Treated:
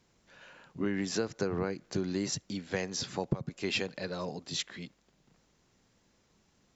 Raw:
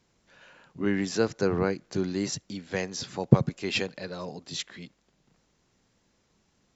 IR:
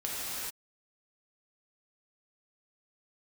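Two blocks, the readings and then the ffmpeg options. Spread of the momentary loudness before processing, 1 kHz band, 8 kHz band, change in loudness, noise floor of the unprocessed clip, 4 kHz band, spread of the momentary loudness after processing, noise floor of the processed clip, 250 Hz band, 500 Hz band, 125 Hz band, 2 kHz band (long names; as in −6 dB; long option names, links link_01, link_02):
14 LU, −5.0 dB, can't be measured, −5.5 dB, −71 dBFS, −2.0 dB, 11 LU, −70 dBFS, −6.0 dB, −5.5 dB, −9.5 dB, −4.0 dB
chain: -af "acompressor=threshold=-27dB:ratio=16"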